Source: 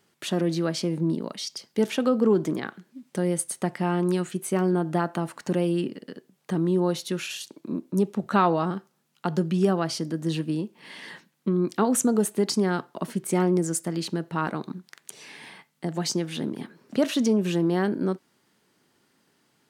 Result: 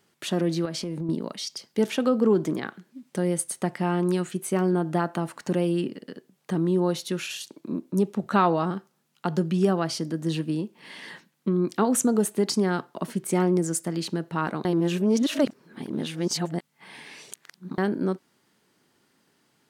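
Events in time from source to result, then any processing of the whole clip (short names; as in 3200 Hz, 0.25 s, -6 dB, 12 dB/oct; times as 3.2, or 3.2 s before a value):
0.65–1.09 compressor, threshold -27 dBFS
14.65–17.78 reverse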